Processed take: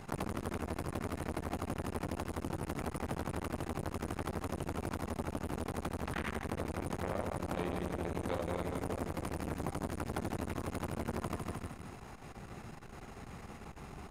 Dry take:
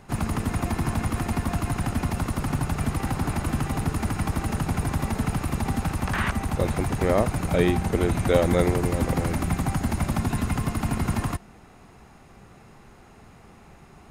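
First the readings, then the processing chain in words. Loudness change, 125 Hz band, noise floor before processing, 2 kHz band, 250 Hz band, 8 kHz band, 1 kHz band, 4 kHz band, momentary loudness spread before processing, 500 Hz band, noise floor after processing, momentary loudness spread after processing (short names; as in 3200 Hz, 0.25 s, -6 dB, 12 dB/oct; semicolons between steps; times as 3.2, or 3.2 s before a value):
-14.0 dB, -15.5 dB, -50 dBFS, -12.5 dB, -12.5 dB, -13.5 dB, -10.5 dB, -12.5 dB, 5 LU, -12.0 dB, -51 dBFS, 11 LU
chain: feedback echo 0.154 s, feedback 41%, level -7 dB; compressor, threshold -31 dBFS, peak gain reduction 16.5 dB; core saturation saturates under 870 Hz; gain +2 dB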